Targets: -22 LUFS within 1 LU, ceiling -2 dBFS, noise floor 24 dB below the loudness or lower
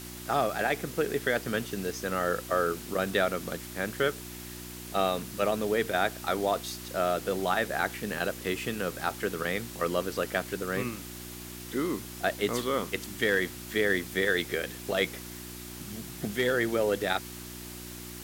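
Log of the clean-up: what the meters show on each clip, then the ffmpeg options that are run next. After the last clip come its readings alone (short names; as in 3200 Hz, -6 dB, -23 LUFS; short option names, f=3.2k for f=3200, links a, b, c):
hum 60 Hz; harmonics up to 360 Hz; hum level -43 dBFS; noise floor -43 dBFS; noise floor target -54 dBFS; loudness -30.0 LUFS; peak -11.5 dBFS; loudness target -22.0 LUFS
-> -af "bandreject=f=60:t=h:w=4,bandreject=f=120:t=h:w=4,bandreject=f=180:t=h:w=4,bandreject=f=240:t=h:w=4,bandreject=f=300:t=h:w=4,bandreject=f=360:t=h:w=4"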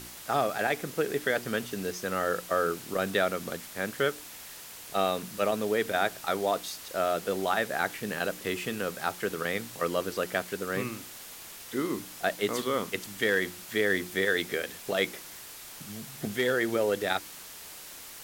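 hum none; noise floor -45 dBFS; noise floor target -54 dBFS
-> -af "afftdn=nr=9:nf=-45"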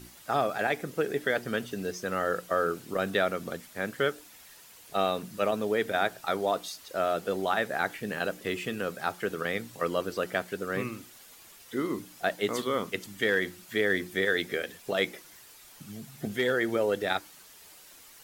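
noise floor -53 dBFS; noise floor target -55 dBFS
-> -af "afftdn=nr=6:nf=-53"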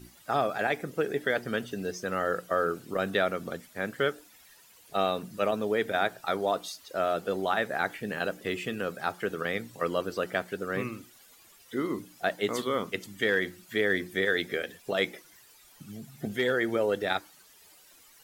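noise floor -57 dBFS; loudness -30.5 LUFS; peak -12.0 dBFS; loudness target -22.0 LUFS
-> -af "volume=8.5dB"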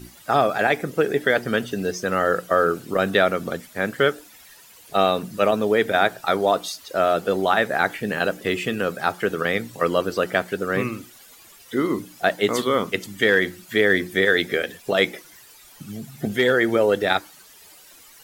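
loudness -22.0 LUFS; peak -3.5 dBFS; noise floor -49 dBFS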